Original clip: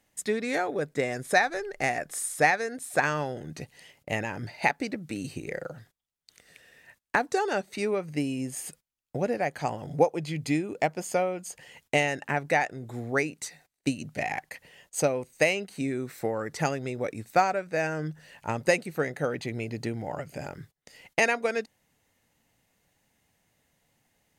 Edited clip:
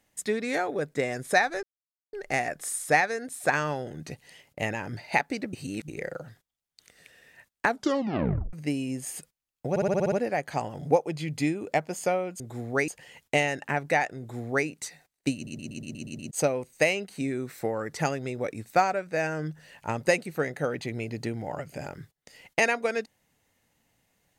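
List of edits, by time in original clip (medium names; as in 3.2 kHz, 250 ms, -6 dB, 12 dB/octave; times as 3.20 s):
1.63 s: insert silence 0.50 s
5.03–5.38 s: reverse
7.18 s: tape stop 0.85 s
9.20 s: stutter 0.06 s, 8 plays
12.79–13.27 s: copy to 11.48 s
13.95 s: stutter in place 0.12 s, 8 plays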